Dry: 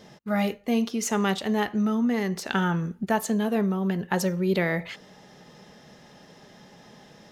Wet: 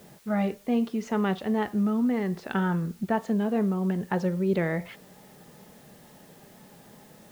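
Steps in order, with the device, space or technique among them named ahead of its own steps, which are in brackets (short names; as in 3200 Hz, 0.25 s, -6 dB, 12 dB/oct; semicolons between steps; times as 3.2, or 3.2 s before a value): cassette deck with a dirty head (tape spacing loss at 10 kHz 29 dB; wow and flutter; white noise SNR 30 dB)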